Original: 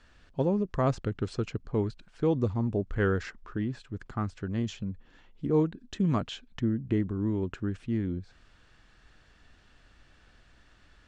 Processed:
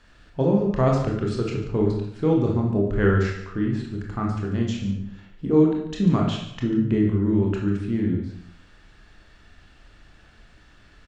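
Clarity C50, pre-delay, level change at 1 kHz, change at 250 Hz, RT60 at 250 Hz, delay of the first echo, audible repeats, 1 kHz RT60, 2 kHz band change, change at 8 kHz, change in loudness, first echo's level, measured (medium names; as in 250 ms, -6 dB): 3.5 dB, 21 ms, +6.0 dB, +8.5 dB, 0.75 s, 143 ms, 1, 0.65 s, +6.0 dB, no reading, +8.0 dB, -12.5 dB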